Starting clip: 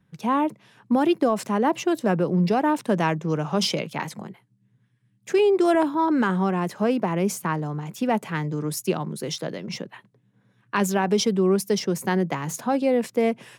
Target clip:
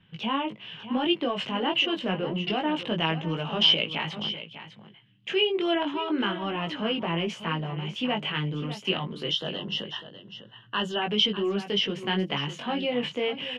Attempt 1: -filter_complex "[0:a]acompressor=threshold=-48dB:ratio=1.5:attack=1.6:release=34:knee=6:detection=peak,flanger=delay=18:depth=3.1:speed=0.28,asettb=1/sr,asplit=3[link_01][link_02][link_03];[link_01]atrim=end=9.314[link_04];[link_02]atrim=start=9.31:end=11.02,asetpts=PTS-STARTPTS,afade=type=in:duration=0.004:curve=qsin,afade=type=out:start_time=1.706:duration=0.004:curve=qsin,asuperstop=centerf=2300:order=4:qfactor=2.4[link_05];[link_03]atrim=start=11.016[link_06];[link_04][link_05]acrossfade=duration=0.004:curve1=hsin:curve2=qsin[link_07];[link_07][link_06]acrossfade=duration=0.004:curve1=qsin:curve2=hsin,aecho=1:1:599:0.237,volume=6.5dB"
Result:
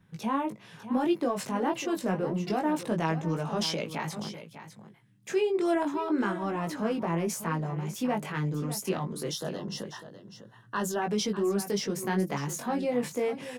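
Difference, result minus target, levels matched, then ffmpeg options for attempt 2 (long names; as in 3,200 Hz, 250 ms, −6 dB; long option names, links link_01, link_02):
4,000 Hz band −11.5 dB
-filter_complex "[0:a]acompressor=threshold=-48dB:ratio=1.5:attack=1.6:release=34:knee=6:detection=peak,lowpass=frequency=3000:width_type=q:width=12,flanger=delay=18:depth=3.1:speed=0.28,asettb=1/sr,asplit=3[link_01][link_02][link_03];[link_01]atrim=end=9.314[link_04];[link_02]atrim=start=9.31:end=11.02,asetpts=PTS-STARTPTS,afade=type=in:duration=0.004:curve=qsin,afade=type=out:start_time=1.706:duration=0.004:curve=qsin,asuperstop=centerf=2300:order=4:qfactor=2.4[link_05];[link_03]atrim=start=11.016[link_06];[link_04][link_05]acrossfade=duration=0.004:curve1=hsin:curve2=qsin[link_07];[link_07][link_06]acrossfade=duration=0.004:curve1=qsin:curve2=hsin,aecho=1:1:599:0.237,volume=6.5dB"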